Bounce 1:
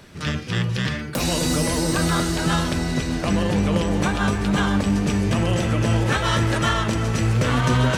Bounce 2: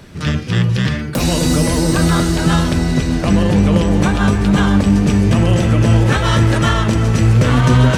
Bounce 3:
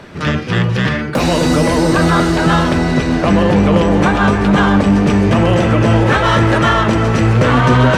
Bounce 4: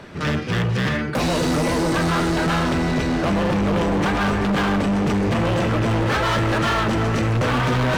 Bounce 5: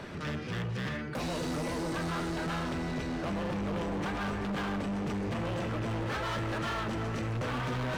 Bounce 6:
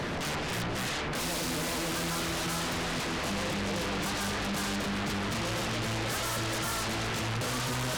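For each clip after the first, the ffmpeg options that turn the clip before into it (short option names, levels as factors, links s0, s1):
-af "lowshelf=f=360:g=6,volume=1.5"
-filter_complex "[0:a]asplit=2[s0][s1];[s1]highpass=f=720:p=1,volume=6.31,asoftclip=type=tanh:threshold=0.891[s2];[s0][s2]amix=inputs=2:normalize=0,lowpass=f=1200:p=1,volume=0.501,volume=1.19"
-af "volume=4.73,asoftclip=hard,volume=0.211,volume=0.631"
-af "alimiter=level_in=1.68:limit=0.0631:level=0:latency=1:release=111,volume=0.596,volume=0.75"
-af "aeval=exprs='0.0299*sin(PI/2*3.16*val(0)/0.0299)':c=same"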